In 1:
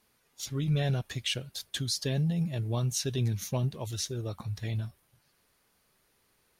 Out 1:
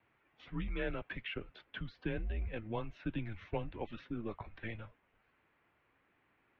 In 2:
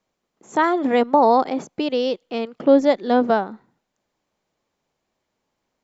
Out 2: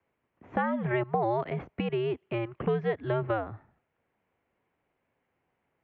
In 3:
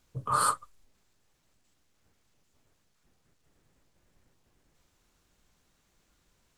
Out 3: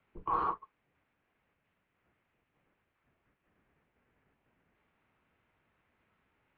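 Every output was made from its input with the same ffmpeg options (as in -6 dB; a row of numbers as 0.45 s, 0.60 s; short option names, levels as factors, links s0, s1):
-filter_complex "[0:a]acrossover=split=740|1700[s0][s1][s2];[s0]acompressor=threshold=0.0316:ratio=4[s3];[s1]acompressor=threshold=0.02:ratio=4[s4];[s2]acompressor=threshold=0.01:ratio=4[s5];[s3][s4][s5]amix=inputs=3:normalize=0,highpass=f=170:t=q:w=0.5412,highpass=f=170:t=q:w=1.307,lowpass=f=2600:t=q:w=0.5176,lowpass=f=2600:t=q:w=0.7071,lowpass=f=2600:t=q:w=1.932,afreqshift=-110,aemphasis=mode=production:type=75fm"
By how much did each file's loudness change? -10.5 LU, -11.5 LU, -6.0 LU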